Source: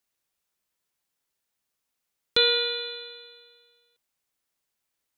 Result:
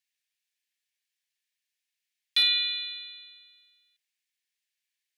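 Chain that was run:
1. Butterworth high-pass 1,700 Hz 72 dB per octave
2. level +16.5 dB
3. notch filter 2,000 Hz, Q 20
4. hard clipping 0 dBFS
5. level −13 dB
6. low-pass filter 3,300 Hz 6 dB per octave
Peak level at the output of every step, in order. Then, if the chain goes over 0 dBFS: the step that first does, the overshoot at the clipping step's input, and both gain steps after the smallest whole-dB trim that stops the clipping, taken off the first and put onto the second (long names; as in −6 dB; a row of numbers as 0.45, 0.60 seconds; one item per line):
−11.5, +5.0, +5.0, 0.0, −13.0, −14.5 dBFS
step 2, 5.0 dB
step 2 +11.5 dB, step 5 −8 dB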